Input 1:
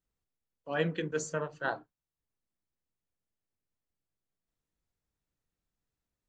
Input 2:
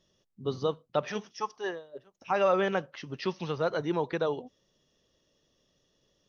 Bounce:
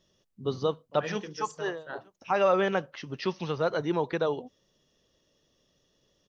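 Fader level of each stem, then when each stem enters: -7.5 dB, +1.5 dB; 0.25 s, 0.00 s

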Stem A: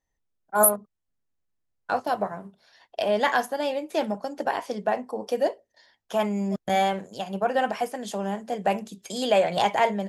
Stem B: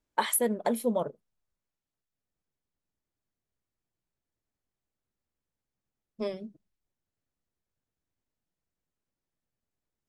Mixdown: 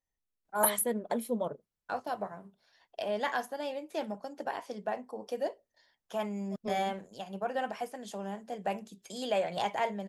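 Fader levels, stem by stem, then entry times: -9.5 dB, -4.5 dB; 0.00 s, 0.45 s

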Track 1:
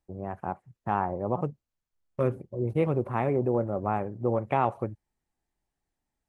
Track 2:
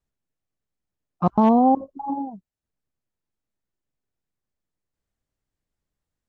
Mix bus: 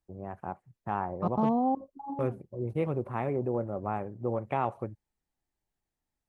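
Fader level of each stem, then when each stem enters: -4.5 dB, -10.5 dB; 0.00 s, 0.00 s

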